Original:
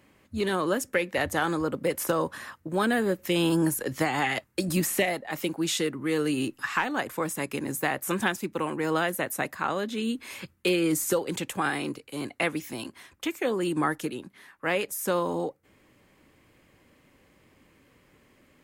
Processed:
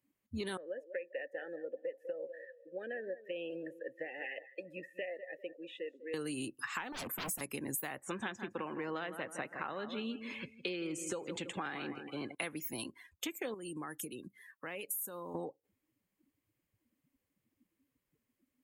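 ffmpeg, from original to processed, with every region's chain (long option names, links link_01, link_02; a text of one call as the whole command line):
ffmpeg -i in.wav -filter_complex "[0:a]asettb=1/sr,asplit=3[link_01][link_02][link_03];[link_01]atrim=end=0.574[link_04];[link_02]atrim=start=0.57:end=6.14,asetpts=PTS-STARTPTS,afade=type=in:duration=0.004:curve=qsin,afade=type=out:start_time=5.566:duration=0.004:curve=qsin,asplit=3[link_05][link_06][link_07];[link_05]bandpass=frequency=530:width_type=q:width=8,volume=0dB[link_08];[link_06]bandpass=frequency=1840:width_type=q:width=8,volume=-6dB[link_09];[link_07]bandpass=frequency=2480:width_type=q:width=8,volume=-9dB[link_10];[link_08][link_09][link_10]amix=inputs=3:normalize=0,aecho=1:1:198|396|594|792:0.2|0.0778|0.0303|0.0118,atrim=end_sample=245637[link_11];[link_03]atrim=start=6.136[link_12];[link_04][link_11]acrossfade=duration=0.004:curve1=hsin:curve2=qsin[link_13];[link_13][link_12]acrossfade=duration=0.004:curve1=qsin:curve2=hsin,asettb=1/sr,asplit=3[link_14][link_15][link_16];[link_14]atrim=end=6.924[link_17];[link_15]atrim=start=6.92:end=7.41,asetpts=PTS-STARTPTS,afade=type=in:duration=0.004:curve=qsin,afade=type=out:start_time=0.486:duration=0.004:curve=qsin,highpass=frequency=190:width_type=q:width=2,aeval=exprs='0.0299*(abs(mod(val(0)/0.0299+3,4)-2)-1)':channel_layout=same[link_18];[link_16]atrim=start=7.406[link_19];[link_17][link_18]acrossfade=duration=0.004:curve1=hsin:curve2=qsin[link_20];[link_20][link_19]acrossfade=duration=0.004:curve1=qsin:curve2=hsin,asettb=1/sr,asplit=3[link_21][link_22][link_23];[link_21]atrim=end=7.984[link_24];[link_22]atrim=start=7.98:end=12.35,asetpts=PTS-STARTPTS,afade=type=in:duration=0.004:curve=qsin,afade=type=out:start_time=4.366:duration=0.004:curve=qsin,lowpass=6500,bass=frequency=250:gain=-3,treble=frequency=4000:gain=-4,aecho=1:1:162|324|486|648:0.251|0.108|0.0464|0.02,atrim=end_sample=192717[link_25];[link_23]atrim=start=12.346[link_26];[link_24][link_25]acrossfade=duration=0.004:curve1=hsin:curve2=qsin[link_27];[link_27][link_26]acrossfade=duration=0.004:curve1=qsin:curve2=hsin,asettb=1/sr,asplit=3[link_28][link_29][link_30];[link_28]atrim=end=13.544[link_31];[link_29]atrim=start=13.54:end=15.35,asetpts=PTS-STARTPTS,afade=type=in:duration=0.004:curve=qsin,afade=type=out:start_time=1.806:duration=0.004:curve=qsin,highshelf=frequency=5000:gain=7.5,acompressor=threshold=-39dB:ratio=3:attack=3.2:release=140:knee=1:detection=peak[link_32];[link_30]atrim=start=15.346[link_33];[link_31][link_32]acrossfade=duration=0.004:curve1=hsin:curve2=qsin[link_34];[link_34][link_33]acrossfade=duration=0.004:curve1=qsin:curve2=hsin,afftdn=noise_reduction=25:noise_floor=-45,aemphasis=mode=production:type=50fm,acompressor=threshold=-33dB:ratio=6,volume=-3.5dB" out.wav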